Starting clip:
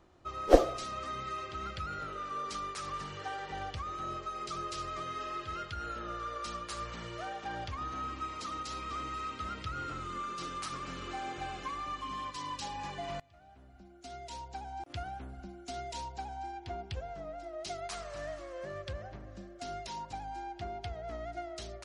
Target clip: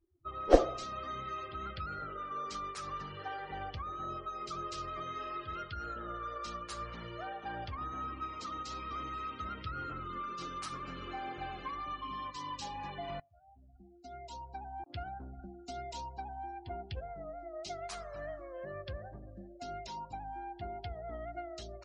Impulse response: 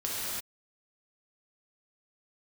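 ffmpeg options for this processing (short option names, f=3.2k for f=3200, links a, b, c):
-af "afftdn=nr=31:nf=-49,volume=-1.5dB"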